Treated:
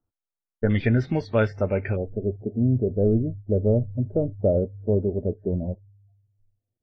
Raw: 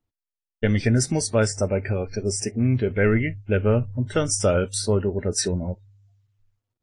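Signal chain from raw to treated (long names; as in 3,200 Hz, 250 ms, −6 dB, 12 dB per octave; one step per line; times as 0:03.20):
elliptic low-pass filter 1,500 Hz, stop band 80 dB, from 0:00.69 3,600 Hz, from 0:01.95 680 Hz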